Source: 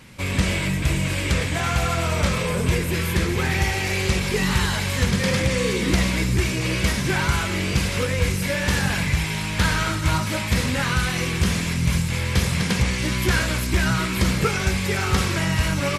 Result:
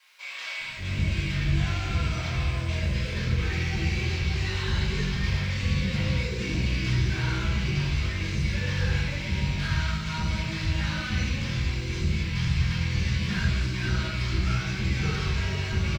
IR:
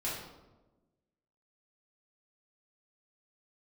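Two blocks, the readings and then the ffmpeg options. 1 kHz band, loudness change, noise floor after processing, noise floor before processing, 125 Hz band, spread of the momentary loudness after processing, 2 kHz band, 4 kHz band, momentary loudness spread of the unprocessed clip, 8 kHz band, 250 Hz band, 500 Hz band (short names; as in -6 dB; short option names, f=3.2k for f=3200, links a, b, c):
-11.0 dB, -5.5 dB, -34 dBFS, -26 dBFS, -3.0 dB, 3 LU, -7.5 dB, -6.5 dB, 2 LU, -14.0 dB, -7.5 dB, -12.0 dB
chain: -filter_complex "[0:a]lowpass=f=5.8k:w=0.5412,lowpass=f=5.8k:w=1.3066,equalizer=f=550:w=0.36:g=-9.5,acrossover=split=320|1300|3500[a][b][c][d];[c]asoftclip=type=hard:threshold=-29dB[e];[d]alimiter=level_in=4.5dB:limit=-24dB:level=0:latency=1:release=291,volume=-4.5dB[f];[a][b][e][f]amix=inputs=4:normalize=0,acrusher=bits=8:mix=0:aa=0.5,acrossover=split=680[g][h];[g]adelay=580[i];[i][h]amix=inputs=2:normalize=0[j];[1:a]atrim=start_sample=2205[k];[j][k]afir=irnorm=-1:irlink=0,volume=-6.5dB"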